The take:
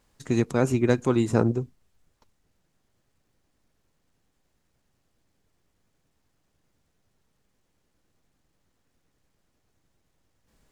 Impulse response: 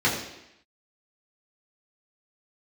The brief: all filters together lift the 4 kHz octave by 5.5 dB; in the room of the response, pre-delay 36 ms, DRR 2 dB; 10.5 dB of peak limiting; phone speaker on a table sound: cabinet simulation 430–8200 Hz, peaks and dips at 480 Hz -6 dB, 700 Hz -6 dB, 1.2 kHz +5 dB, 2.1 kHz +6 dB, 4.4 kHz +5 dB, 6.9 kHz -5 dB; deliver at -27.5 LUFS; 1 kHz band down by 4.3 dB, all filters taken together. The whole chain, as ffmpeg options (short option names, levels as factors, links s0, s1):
-filter_complex "[0:a]equalizer=f=1000:t=o:g=-7,equalizer=f=4000:t=o:g=4,alimiter=limit=0.119:level=0:latency=1,asplit=2[s0][s1];[1:a]atrim=start_sample=2205,adelay=36[s2];[s1][s2]afir=irnorm=-1:irlink=0,volume=0.133[s3];[s0][s3]amix=inputs=2:normalize=0,highpass=f=430:w=0.5412,highpass=f=430:w=1.3066,equalizer=f=480:t=q:w=4:g=-6,equalizer=f=700:t=q:w=4:g=-6,equalizer=f=1200:t=q:w=4:g=5,equalizer=f=2100:t=q:w=4:g=6,equalizer=f=4400:t=q:w=4:g=5,equalizer=f=6900:t=q:w=4:g=-5,lowpass=f=8200:w=0.5412,lowpass=f=8200:w=1.3066,volume=2.99"